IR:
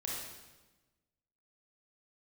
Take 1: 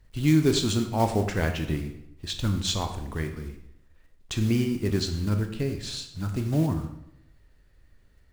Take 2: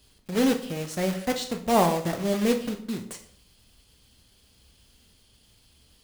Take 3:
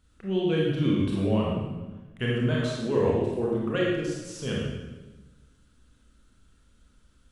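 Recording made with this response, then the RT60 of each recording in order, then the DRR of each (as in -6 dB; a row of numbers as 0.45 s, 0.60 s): 3; 0.80 s, 0.55 s, 1.2 s; 6.0 dB, 5.5 dB, -4.5 dB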